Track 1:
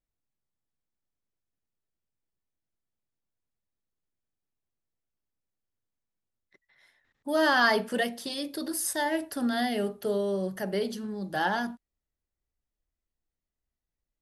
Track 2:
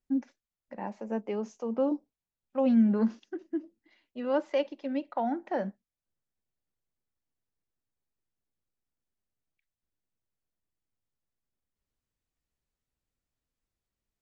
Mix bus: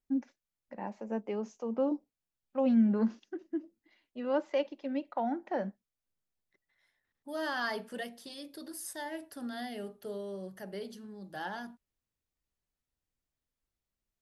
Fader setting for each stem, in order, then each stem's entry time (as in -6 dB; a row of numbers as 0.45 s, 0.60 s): -11.5 dB, -2.5 dB; 0.00 s, 0.00 s